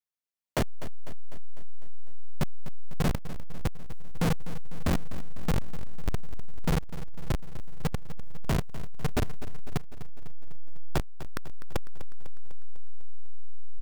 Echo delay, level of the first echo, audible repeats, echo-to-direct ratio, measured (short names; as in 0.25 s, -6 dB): 0.25 s, -14.0 dB, 5, -12.0 dB